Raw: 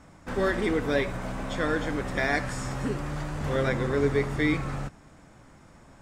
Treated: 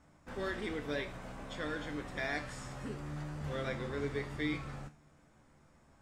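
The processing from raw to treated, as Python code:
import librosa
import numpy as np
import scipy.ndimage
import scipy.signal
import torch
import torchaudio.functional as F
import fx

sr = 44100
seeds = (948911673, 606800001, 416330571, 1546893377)

y = fx.dynamic_eq(x, sr, hz=3400.0, q=1.1, threshold_db=-45.0, ratio=4.0, max_db=5)
y = fx.comb_fb(y, sr, f0_hz=74.0, decay_s=0.32, harmonics='all', damping=0.0, mix_pct=70)
y = F.gain(torch.from_numpy(y), -6.0).numpy()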